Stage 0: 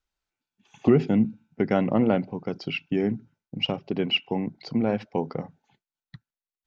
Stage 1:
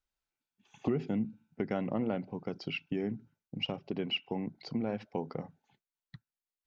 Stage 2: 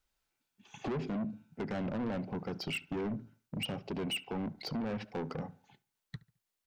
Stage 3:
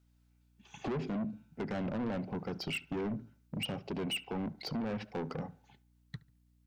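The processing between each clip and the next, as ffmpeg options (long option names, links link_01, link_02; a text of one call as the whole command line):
ffmpeg -i in.wav -af "acompressor=threshold=-27dB:ratio=2,volume=-5.5dB" out.wav
ffmpeg -i in.wav -filter_complex "[0:a]asplit=2[link_01][link_02];[link_02]alimiter=level_in=4.5dB:limit=-24dB:level=0:latency=1:release=163,volume=-4.5dB,volume=3dB[link_03];[link_01][link_03]amix=inputs=2:normalize=0,asoftclip=type=tanh:threshold=-32dB,asplit=2[link_04][link_05];[link_05]adelay=71,lowpass=frequency=2400:poles=1,volume=-20.5dB,asplit=2[link_06][link_07];[link_07]adelay=71,lowpass=frequency=2400:poles=1,volume=0.37,asplit=2[link_08][link_09];[link_09]adelay=71,lowpass=frequency=2400:poles=1,volume=0.37[link_10];[link_04][link_06][link_08][link_10]amix=inputs=4:normalize=0" out.wav
ffmpeg -i in.wav -af "aeval=exprs='val(0)+0.000447*(sin(2*PI*60*n/s)+sin(2*PI*2*60*n/s)/2+sin(2*PI*3*60*n/s)/3+sin(2*PI*4*60*n/s)/4+sin(2*PI*5*60*n/s)/5)':channel_layout=same" out.wav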